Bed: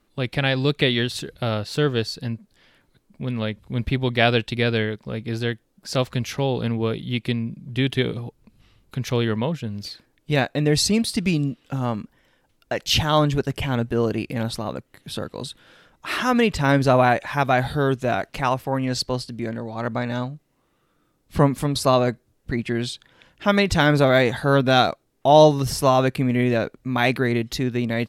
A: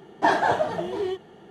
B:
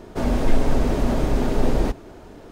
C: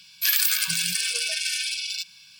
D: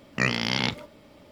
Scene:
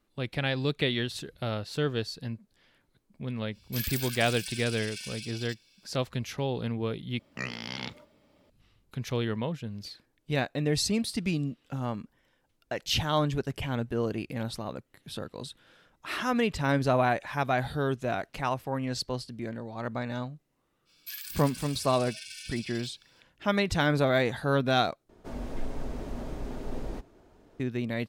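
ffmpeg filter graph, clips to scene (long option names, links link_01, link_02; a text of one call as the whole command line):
ffmpeg -i bed.wav -i cue0.wav -i cue1.wav -i cue2.wav -i cue3.wav -filter_complex "[3:a]asplit=2[link_01][link_02];[0:a]volume=-8dB[link_03];[link_02]alimiter=limit=-16dB:level=0:latency=1:release=311[link_04];[link_03]asplit=3[link_05][link_06][link_07];[link_05]atrim=end=7.194[link_08];[4:a]atrim=end=1.31,asetpts=PTS-STARTPTS,volume=-11.5dB[link_09];[link_06]atrim=start=8.496:end=25.094[link_10];[2:a]atrim=end=2.51,asetpts=PTS-STARTPTS,volume=-16dB[link_11];[link_07]atrim=start=27.596[link_12];[link_01]atrim=end=2.39,asetpts=PTS-STARTPTS,volume=-14dB,afade=type=in:duration=0.05,afade=type=out:start_time=2.34:duration=0.05,adelay=3510[link_13];[link_04]atrim=end=2.39,asetpts=PTS-STARTPTS,volume=-14dB,afade=type=in:duration=0.05,afade=type=out:start_time=2.34:duration=0.05,adelay=20850[link_14];[link_08][link_09]acrossfade=duration=0.004:curve1=hsin:curve2=hsin[link_15];[link_15][link_10]acrossfade=duration=0.004:curve1=hsin:curve2=hsin[link_16];[link_16][link_11]acrossfade=duration=0.004:curve1=hsin:curve2=hsin[link_17];[link_17][link_12]acrossfade=duration=0.004:curve1=hsin:curve2=hsin[link_18];[link_18][link_13][link_14]amix=inputs=3:normalize=0" out.wav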